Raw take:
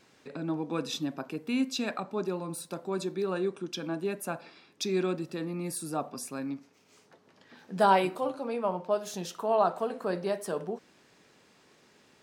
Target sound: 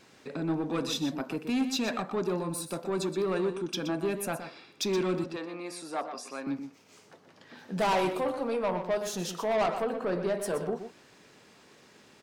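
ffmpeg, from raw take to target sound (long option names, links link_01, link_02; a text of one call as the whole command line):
ffmpeg -i in.wav -filter_complex "[0:a]asettb=1/sr,asplit=3[link_01][link_02][link_03];[link_01]atrim=end=9.824[link_04];[link_02]atrim=start=9.82:end=10.4,asetpts=PTS-STARTPTS,afade=type=in:duration=0.004:curve=qsin,afade=type=out:start_time=0.576:duration=0.004:curve=qsin,aemphasis=mode=reproduction:type=50kf[link_05];[link_03]atrim=start=10.396[link_06];[link_04][link_05]acrossfade=duration=0.004:curve1=hsin:curve2=qsin[link_07];[link_07][link_06]acrossfade=duration=0.004:curve1=qsin:curve2=hsin,asoftclip=type=tanh:threshold=-27.5dB,asettb=1/sr,asplit=3[link_08][link_09][link_10];[link_08]atrim=end=5.244[link_11];[link_09]atrim=start=5.24:end=6.47,asetpts=PTS-STARTPTS,afade=type=in:duration=0.004:curve=qsin,afade=type=out:start_time=1.226:duration=0.004:curve=qsin,highpass=460,lowpass=5200[link_12];[link_10]atrim=start=6.466[link_13];[link_11][link_12]acrossfade=duration=0.004:curve1=hsin:curve2=qsin[link_14];[link_14][link_13]acrossfade=duration=0.004:curve1=qsin:curve2=hsin,asplit=2[link_15][link_16];[link_16]adelay=122.4,volume=-9dB,highshelf=frequency=4000:gain=-2.76[link_17];[link_15][link_17]amix=inputs=2:normalize=0,volume=4dB" out.wav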